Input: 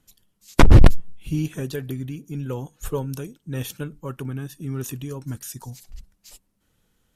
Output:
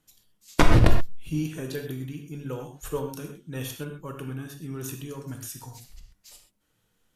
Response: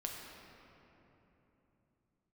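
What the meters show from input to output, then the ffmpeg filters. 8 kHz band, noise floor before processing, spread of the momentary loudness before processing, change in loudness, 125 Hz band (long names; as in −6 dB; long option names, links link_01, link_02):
−2.0 dB, −70 dBFS, 19 LU, −5.0 dB, −6.0 dB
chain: -filter_complex "[0:a]lowshelf=frequency=210:gain=-6.5[link_01];[1:a]atrim=start_sample=2205,atrim=end_sample=6174[link_02];[link_01][link_02]afir=irnorm=-1:irlink=0"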